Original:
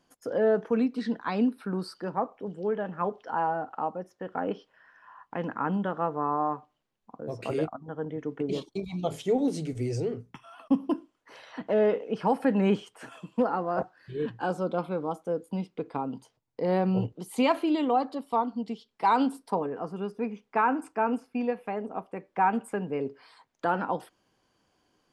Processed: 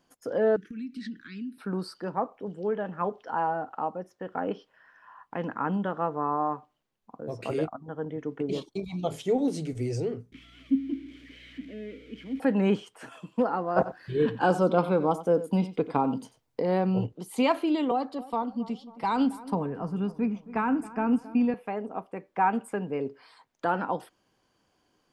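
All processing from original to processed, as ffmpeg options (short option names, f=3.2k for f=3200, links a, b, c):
-filter_complex "[0:a]asettb=1/sr,asplit=3[a][b][c];[a]atrim=end=0.564[d];[b]atrim=start=0.56:end=1.58,asetpts=PTS-STARTPTS,afade=t=in:d=0.004:c=qsin,afade=t=out:st=1.016:d=0.004:c=qsin,acompressor=threshold=-33dB:ratio=5:attack=3.2:release=140:knee=1:detection=peak,asuperstop=centerf=730:order=8:qfactor=0.57[e];[c]atrim=start=1.576[f];[d][e]acrossfade=d=0.004:c1=hsin:c2=qsin[g];[g][f]acrossfade=d=0.004:c1=qsin:c2=hsin,asettb=1/sr,asplit=3[h][i][j];[h]atrim=end=10.324[k];[i]atrim=start=10.32:end=12.4,asetpts=PTS-STARTPTS,afade=t=in:d=0.004:c=qsin,afade=t=out:st=2.076:d=0.004:c=qsin,aeval=exprs='val(0)+0.5*0.0251*sgn(val(0))':c=same,asplit=3[l][m][n];[l]bandpass=f=270:t=q:w=8,volume=0dB[o];[m]bandpass=f=2.29k:t=q:w=8,volume=-6dB[p];[n]bandpass=f=3.01k:t=q:w=8,volume=-9dB[q];[o][p][q]amix=inputs=3:normalize=0,aeval=exprs='val(0)+0.00141*(sin(2*PI*60*n/s)+sin(2*PI*2*60*n/s)/2+sin(2*PI*3*60*n/s)/3+sin(2*PI*4*60*n/s)/4+sin(2*PI*5*60*n/s)/5)':c=same[r];[j]atrim=start=12.396[s];[k][r]acrossfade=d=0.004:c1=hsin:c2=qsin[t];[t][s]acrossfade=d=0.004:c1=qsin:c2=hsin,asettb=1/sr,asplit=3[u][v][w];[u]atrim=end=13.764[x];[v]atrim=start=13.76:end=16.62,asetpts=PTS-STARTPTS,afade=t=in:d=0.004:c=qsin,afade=t=out:st=2.856:d=0.004:c=qsin,acontrast=69,aecho=1:1:92:0.188,atrim=end_sample=126126[y];[w]atrim=start=16.616[z];[x][y]acrossfade=d=0.004:c1=hsin:c2=qsin[aa];[aa][z]acrossfade=d=0.004:c1=qsin:c2=hsin,asettb=1/sr,asplit=3[ab][ac][ad];[ab]atrim=end=17.914[ae];[ac]atrim=start=17.91:end=21.54,asetpts=PTS-STARTPTS,afade=t=in:d=0.004:c=qsin,afade=t=out:st=3.626:d=0.004:c=qsin,asubboost=boost=7.5:cutoff=200,acrossover=split=480|3000[af][ag][ah];[ag]acompressor=threshold=-28dB:ratio=2:attack=3.2:release=140:knee=2.83:detection=peak[ai];[af][ai][ah]amix=inputs=3:normalize=0,asplit=2[aj][ak];[ak]adelay=271,lowpass=f=1.5k:p=1,volume=-16.5dB,asplit=2[al][am];[am]adelay=271,lowpass=f=1.5k:p=1,volume=0.53,asplit=2[an][ao];[ao]adelay=271,lowpass=f=1.5k:p=1,volume=0.53,asplit=2[ap][aq];[aq]adelay=271,lowpass=f=1.5k:p=1,volume=0.53,asplit=2[ar][as];[as]adelay=271,lowpass=f=1.5k:p=1,volume=0.53[at];[aj][al][an][ap][ar][at]amix=inputs=6:normalize=0,atrim=end_sample=160083[au];[ad]atrim=start=21.536[av];[ae][au]acrossfade=d=0.004:c1=hsin:c2=qsin[aw];[aw][av]acrossfade=d=0.004:c1=qsin:c2=hsin"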